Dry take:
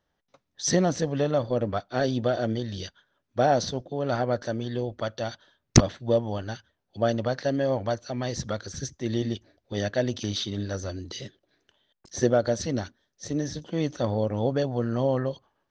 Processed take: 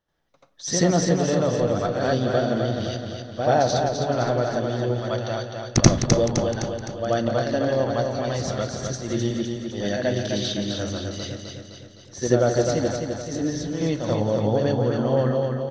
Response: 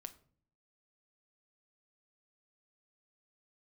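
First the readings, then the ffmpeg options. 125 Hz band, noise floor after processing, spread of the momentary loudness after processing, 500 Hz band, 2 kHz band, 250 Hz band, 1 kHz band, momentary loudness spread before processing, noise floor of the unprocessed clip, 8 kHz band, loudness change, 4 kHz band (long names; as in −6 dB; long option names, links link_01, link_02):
+4.5 dB, −47 dBFS, 10 LU, +4.5 dB, +4.5 dB, +4.5 dB, +4.5 dB, 13 LU, −79 dBFS, +4.0 dB, +4.0 dB, +4.0 dB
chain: -filter_complex "[0:a]aecho=1:1:257|514|771|1028|1285|1542|1799:0.562|0.298|0.158|0.0837|0.0444|0.0235|0.0125,asplit=2[link_01][link_02];[1:a]atrim=start_sample=2205,adelay=84[link_03];[link_02][link_03]afir=irnorm=-1:irlink=0,volume=11.5dB[link_04];[link_01][link_04]amix=inputs=2:normalize=0,volume=-4.5dB"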